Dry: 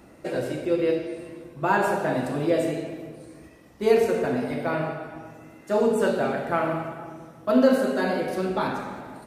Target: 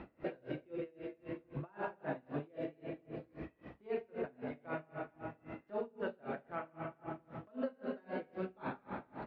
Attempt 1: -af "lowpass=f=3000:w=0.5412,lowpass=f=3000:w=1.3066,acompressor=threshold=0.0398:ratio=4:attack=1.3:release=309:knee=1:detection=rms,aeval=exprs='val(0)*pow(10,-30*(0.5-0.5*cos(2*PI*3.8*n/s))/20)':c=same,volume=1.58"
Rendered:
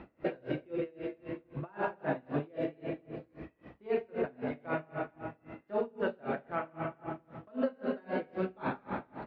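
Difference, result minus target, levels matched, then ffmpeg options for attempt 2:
compression: peak gain reduction -7 dB
-af "lowpass=f=3000:w=0.5412,lowpass=f=3000:w=1.3066,acompressor=threshold=0.0141:ratio=4:attack=1.3:release=309:knee=1:detection=rms,aeval=exprs='val(0)*pow(10,-30*(0.5-0.5*cos(2*PI*3.8*n/s))/20)':c=same,volume=1.58"

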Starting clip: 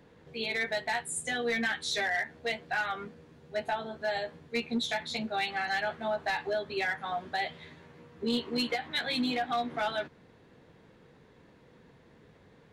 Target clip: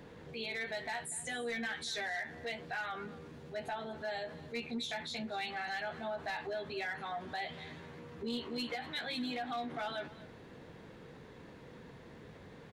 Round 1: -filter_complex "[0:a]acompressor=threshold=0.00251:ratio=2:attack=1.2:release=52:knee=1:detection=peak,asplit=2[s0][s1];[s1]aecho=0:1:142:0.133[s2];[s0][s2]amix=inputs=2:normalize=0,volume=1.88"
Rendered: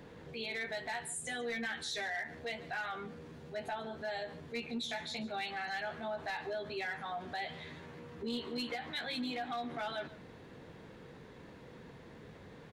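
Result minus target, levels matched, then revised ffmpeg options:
echo 100 ms early
-filter_complex "[0:a]acompressor=threshold=0.00251:ratio=2:attack=1.2:release=52:knee=1:detection=peak,asplit=2[s0][s1];[s1]aecho=0:1:242:0.133[s2];[s0][s2]amix=inputs=2:normalize=0,volume=1.88"

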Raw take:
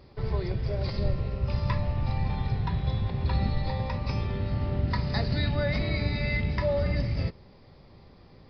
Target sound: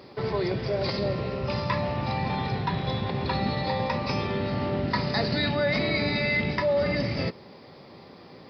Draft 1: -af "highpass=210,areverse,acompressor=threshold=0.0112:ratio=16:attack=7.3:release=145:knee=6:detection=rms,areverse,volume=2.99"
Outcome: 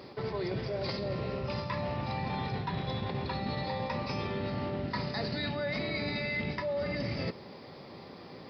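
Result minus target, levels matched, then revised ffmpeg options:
compression: peak gain reduction +9.5 dB
-af "highpass=210,areverse,acompressor=threshold=0.0355:ratio=16:attack=7.3:release=145:knee=6:detection=rms,areverse,volume=2.99"

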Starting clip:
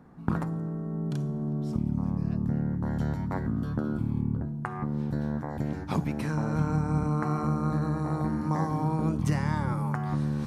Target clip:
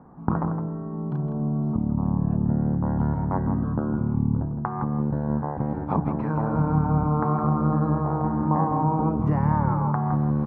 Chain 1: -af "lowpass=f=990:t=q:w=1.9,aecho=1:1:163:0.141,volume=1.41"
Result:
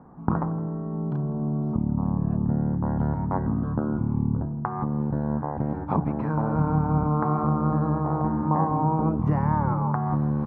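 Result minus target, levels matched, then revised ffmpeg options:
echo-to-direct -9 dB
-af "lowpass=f=990:t=q:w=1.9,aecho=1:1:163:0.398,volume=1.41"

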